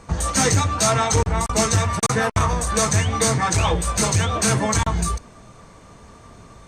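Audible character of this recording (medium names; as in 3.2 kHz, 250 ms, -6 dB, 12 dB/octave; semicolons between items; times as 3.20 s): noise floor -46 dBFS; spectral tilt -4.0 dB/octave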